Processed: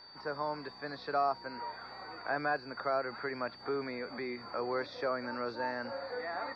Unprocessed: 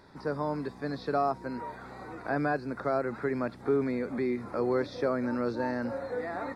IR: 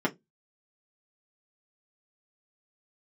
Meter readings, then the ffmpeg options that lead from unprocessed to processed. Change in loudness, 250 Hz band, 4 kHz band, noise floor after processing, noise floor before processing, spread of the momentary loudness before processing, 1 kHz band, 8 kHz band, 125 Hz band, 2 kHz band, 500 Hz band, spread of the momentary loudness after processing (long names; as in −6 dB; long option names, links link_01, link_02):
−5.0 dB, −11.5 dB, +5.5 dB, −52 dBFS, −48 dBFS, 7 LU, −1.5 dB, can't be measured, −13.0 dB, 0.0 dB, −6.0 dB, 9 LU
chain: -filter_complex "[0:a]acrossover=split=580 5000:gain=0.224 1 0.141[link_01][link_02][link_03];[link_01][link_02][link_03]amix=inputs=3:normalize=0,aeval=exprs='val(0)+0.00251*sin(2*PI*4600*n/s)':channel_layout=same"